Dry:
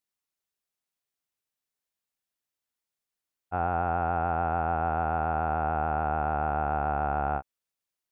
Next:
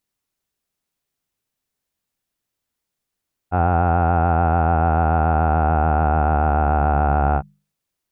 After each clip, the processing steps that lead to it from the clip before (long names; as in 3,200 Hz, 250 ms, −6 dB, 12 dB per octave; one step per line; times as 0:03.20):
low-shelf EQ 330 Hz +10 dB
mains-hum notches 50/100/150/200 Hz
level +6.5 dB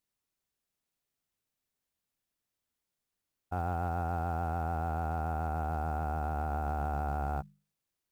brickwall limiter −18 dBFS, peak gain reduction 11 dB
floating-point word with a short mantissa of 4 bits
level −6.5 dB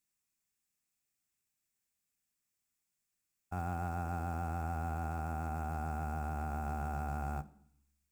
convolution reverb RT60 0.65 s, pre-delay 3 ms, DRR 12.5 dB
level +1 dB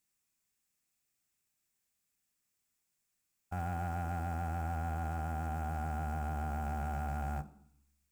soft clipping −32 dBFS, distortion −15 dB
level +3 dB